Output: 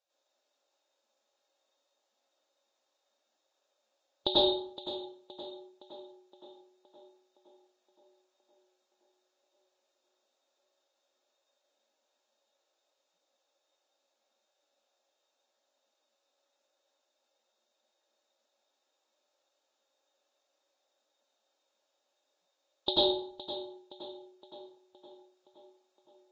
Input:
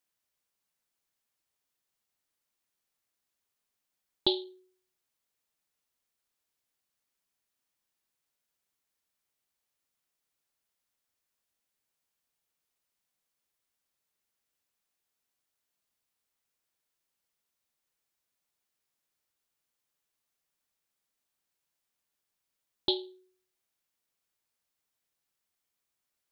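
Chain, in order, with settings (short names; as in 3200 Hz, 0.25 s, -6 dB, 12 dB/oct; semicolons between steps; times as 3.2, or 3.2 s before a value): thirty-one-band EQ 200 Hz -7 dB, 800 Hz +8 dB, 2000 Hz -6 dB; compressor 5:1, threshold -29 dBFS, peak gain reduction 8 dB; small resonant body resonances 560/3700 Hz, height 18 dB, ringing for 55 ms; tape echo 0.517 s, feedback 64%, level -11 dB, low-pass 3400 Hz; plate-style reverb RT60 0.6 s, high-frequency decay 0.65×, pre-delay 80 ms, DRR -8.5 dB; gain -3.5 dB; Vorbis 48 kbps 16000 Hz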